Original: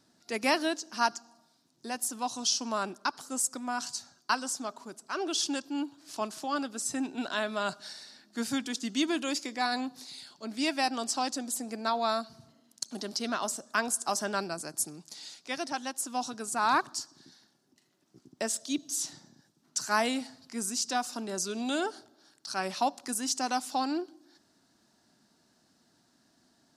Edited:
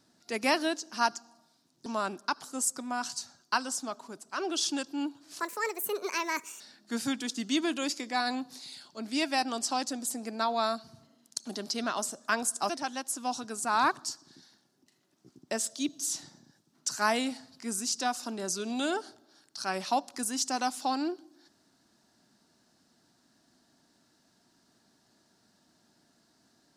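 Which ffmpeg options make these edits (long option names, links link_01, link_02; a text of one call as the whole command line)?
ffmpeg -i in.wav -filter_complex "[0:a]asplit=5[link_01][link_02][link_03][link_04][link_05];[link_01]atrim=end=1.862[link_06];[link_02]atrim=start=2.628:end=6.174[link_07];[link_03]atrim=start=6.17:end=8.06,asetpts=PTS-STARTPTS,asetrate=69237,aresample=44100[link_08];[link_04]atrim=start=8.056:end=14.152[link_09];[link_05]atrim=start=15.588[link_10];[link_06][link_07]acrossfade=duration=0.004:curve1=hsin:curve2=hsin[link_11];[link_11][link_08]acrossfade=duration=0.004:curve1=hsin:curve2=hsin[link_12];[link_12][link_09]acrossfade=duration=0.004:curve1=hsin:curve2=hsin[link_13];[link_13][link_10]acrossfade=duration=0.004:curve1=hsin:curve2=hsin" out.wav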